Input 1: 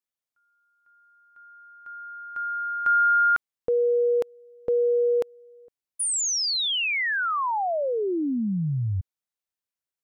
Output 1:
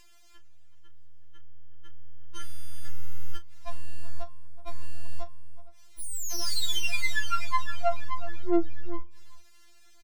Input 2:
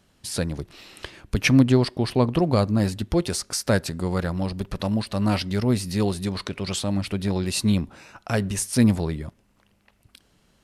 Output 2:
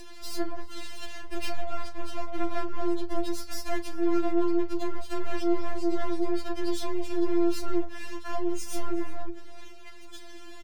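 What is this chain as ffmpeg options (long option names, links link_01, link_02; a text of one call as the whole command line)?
ffmpeg -i in.wav -filter_complex "[0:a]lowpass=5900,afwtdn=0.0355,afreqshift=160,lowshelf=frequency=490:gain=-8,acompressor=mode=upward:threshold=-26dB:ratio=2.5:attack=14:release=59:knee=2.83:detection=peak,alimiter=limit=-16dB:level=0:latency=1:release=360,aeval=exprs='max(val(0),0)':channel_layout=same,bandreject=frequency=263.3:width_type=h:width=4,bandreject=frequency=526.6:width_type=h:width=4,bandreject=frequency=789.9:width_type=h:width=4,bandreject=frequency=1053.2:width_type=h:width=4,bandreject=frequency=1316.5:width_type=h:width=4,bandreject=frequency=1579.8:width_type=h:width=4,bandreject=frequency=1843.1:width_type=h:width=4,bandreject=frequency=2106.4:width_type=h:width=4,bandreject=frequency=2369.7:width_type=h:width=4,bandreject=frequency=2633:width_type=h:width=4,bandreject=frequency=2896.3:width_type=h:width=4,bandreject=frequency=3159.6:width_type=h:width=4,bandreject=frequency=3422.9:width_type=h:width=4,bandreject=frequency=3686.2:width_type=h:width=4,bandreject=frequency=3949.5:width_type=h:width=4,bandreject=frequency=4212.8:width_type=h:width=4,bandreject=frequency=4476.1:width_type=h:width=4,bandreject=frequency=4739.4:width_type=h:width=4,bandreject=frequency=5002.7:width_type=h:width=4,bandreject=frequency=5266:width_type=h:width=4,bandreject=frequency=5529.3:width_type=h:width=4,bandreject=frequency=5792.6:width_type=h:width=4,bandreject=frequency=6055.9:width_type=h:width=4,asoftclip=type=tanh:threshold=-26.5dB,asplit=2[link_01][link_02];[link_02]adelay=35,volume=-13dB[link_03];[link_01][link_03]amix=inputs=2:normalize=0,asplit=2[link_04][link_05];[link_05]adelay=373.2,volume=-16dB,highshelf=frequency=4000:gain=-8.4[link_06];[link_04][link_06]amix=inputs=2:normalize=0,afftfilt=real='re*4*eq(mod(b,16),0)':imag='im*4*eq(mod(b,16),0)':win_size=2048:overlap=0.75,volume=5.5dB" out.wav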